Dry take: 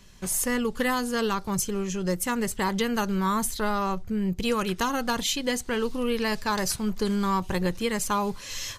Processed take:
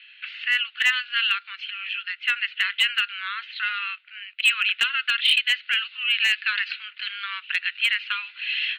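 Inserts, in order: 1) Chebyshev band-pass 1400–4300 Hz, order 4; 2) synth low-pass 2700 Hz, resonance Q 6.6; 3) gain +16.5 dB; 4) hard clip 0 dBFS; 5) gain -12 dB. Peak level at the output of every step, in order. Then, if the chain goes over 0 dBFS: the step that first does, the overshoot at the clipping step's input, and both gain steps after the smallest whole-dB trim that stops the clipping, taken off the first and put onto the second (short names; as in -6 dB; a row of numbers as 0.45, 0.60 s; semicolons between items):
-19.0, -9.0, +7.5, 0.0, -12.0 dBFS; step 3, 7.5 dB; step 3 +8.5 dB, step 5 -4 dB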